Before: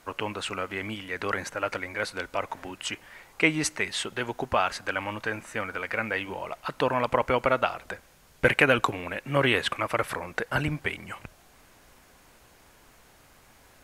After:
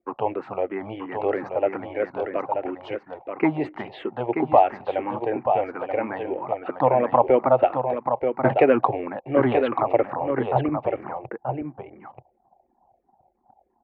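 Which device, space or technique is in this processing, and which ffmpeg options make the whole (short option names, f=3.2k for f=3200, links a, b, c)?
barber-pole phaser into a guitar amplifier: -filter_complex "[0:a]asettb=1/sr,asplit=3[a][b][c];[a]atrim=end=10.104[d];[b]atrim=start=10.1:end=11.05,asetpts=PTS-STARTPTS,afade=t=in:d=0.004:c=qsin,afade=t=out:st=0.946:d=0.004:c=qsin,lowpass=1.9k[e];[c]atrim=start=11.046[f];[d][e]acrossfade=d=0.004:c1=hsin:c2=qsin[g];[g][f]acrossfade=d=0.004:c1=qsin:c2=hsin,asplit=2[h][i];[i]afreqshift=-3[j];[h][j]amix=inputs=2:normalize=1,asoftclip=type=tanh:threshold=-10dB,highpass=100,equalizer=f=130:t=q:w=4:g=9,equalizer=f=240:t=q:w=4:g=4,equalizer=f=440:t=q:w=4:g=-3,equalizer=f=780:t=q:w=4:g=9,equalizer=f=1.5k:t=q:w=4:g=-6,lowpass=f=3.8k:w=0.5412,lowpass=f=3.8k:w=1.3066,anlmdn=0.00398,firequalizer=gain_entry='entry(190,0);entry(360,13);entry(1200,2);entry(3400,-11)':delay=0.05:min_phase=1,aecho=1:1:932:0.501"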